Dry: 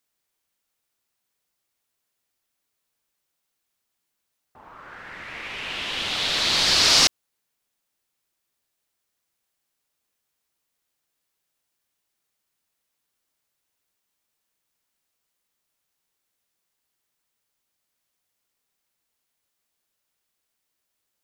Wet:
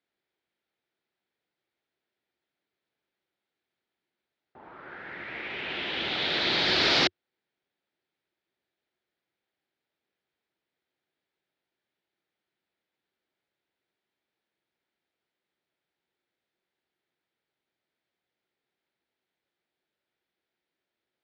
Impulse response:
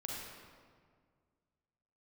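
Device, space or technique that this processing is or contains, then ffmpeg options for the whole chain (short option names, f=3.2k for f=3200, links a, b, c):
guitar cabinet: -af "highpass=81,equalizer=f=93:t=q:w=4:g=-6,equalizer=f=360:t=q:w=4:g=7,equalizer=f=1.1k:t=q:w=4:g=-8,equalizer=f=2.8k:t=q:w=4:g=-5,lowpass=f=3.6k:w=0.5412,lowpass=f=3.6k:w=1.3066"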